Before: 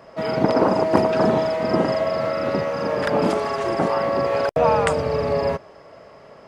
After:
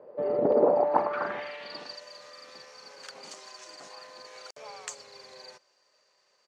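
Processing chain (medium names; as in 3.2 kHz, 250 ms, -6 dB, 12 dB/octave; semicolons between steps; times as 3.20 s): median filter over 3 samples; pitch shift -1.5 st; band-pass sweep 480 Hz -> 6.4 kHz, 0.60–2.03 s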